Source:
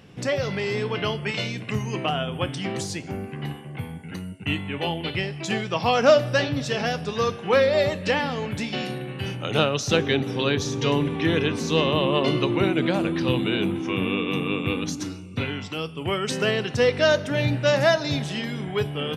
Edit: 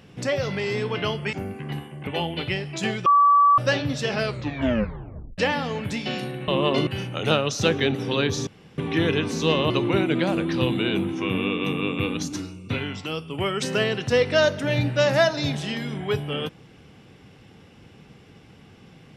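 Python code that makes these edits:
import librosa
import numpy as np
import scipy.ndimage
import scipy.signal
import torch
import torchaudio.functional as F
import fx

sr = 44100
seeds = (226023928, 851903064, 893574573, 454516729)

y = fx.edit(x, sr, fx.cut(start_s=1.33, length_s=1.73),
    fx.cut(start_s=3.8, length_s=0.94),
    fx.bleep(start_s=5.73, length_s=0.52, hz=1150.0, db=-12.5),
    fx.tape_stop(start_s=6.77, length_s=1.28),
    fx.room_tone_fill(start_s=10.75, length_s=0.31),
    fx.move(start_s=11.98, length_s=0.39, to_s=9.15), tone=tone)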